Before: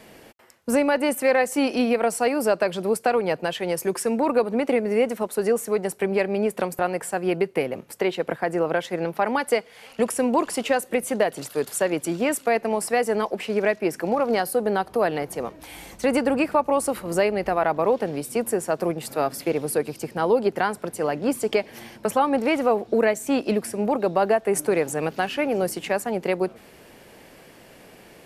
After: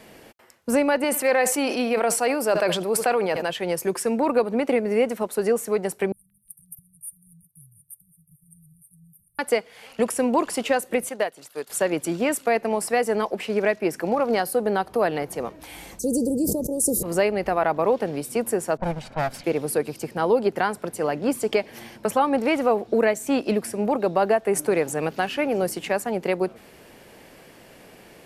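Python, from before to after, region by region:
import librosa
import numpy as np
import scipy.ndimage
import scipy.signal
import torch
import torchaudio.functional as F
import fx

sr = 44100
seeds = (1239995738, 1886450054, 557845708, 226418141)

y = fx.chain(x, sr, fx.low_shelf(hz=210.0, db=-10.5),
    fx.echo_single(ms=74, db=-22.5),
    fx.sustainer(db_per_s=49.0), at=(1.04, 3.5))
y = fx.chain(y, sr, fx.brickwall_bandstop(low_hz=160.0, high_hz=8500.0),
    fx.low_shelf(hz=340.0, db=-11.0),
    fx.echo_stepped(ms=180, hz=2200.0, octaves=0.7, feedback_pct=70, wet_db=-10.0), at=(6.12, 9.39))
y = fx.chain(y, sr, fx.low_shelf(hz=330.0, db=-10.5),
    fx.upward_expand(threshold_db=-40.0, expansion=1.5), at=(11.09, 11.7))
y = fx.chain(y, sr, fx.ellip_bandstop(low_hz=450.0, high_hz=6200.0, order=3, stop_db=80),
    fx.high_shelf(hz=3500.0, db=10.5),
    fx.sustainer(db_per_s=29.0), at=(15.99, 17.03))
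y = fx.chain(y, sr, fx.lower_of_two(delay_ms=1.3),
    fx.env_lowpass(base_hz=570.0, full_db=-22.5), at=(18.77, 19.44))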